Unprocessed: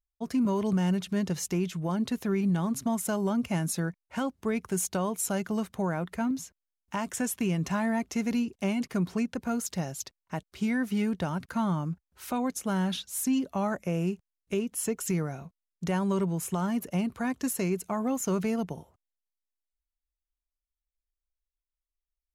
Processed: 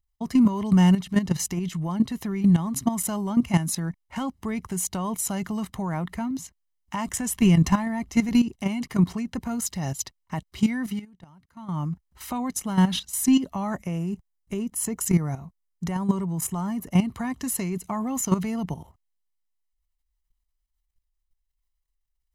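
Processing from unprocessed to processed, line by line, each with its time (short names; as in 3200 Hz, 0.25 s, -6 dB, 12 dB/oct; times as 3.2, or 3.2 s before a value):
7.08–8.42 low shelf 68 Hz +10.5 dB
10.88–11.8 dip -23 dB, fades 0.14 s
13.98–16.93 bell 3100 Hz -5.5 dB 1.3 oct
whole clip: low shelf 62 Hz +8.5 dB; comb 1 ms, depth 48%; level quantiser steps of 12 dB; gain +8.5 dB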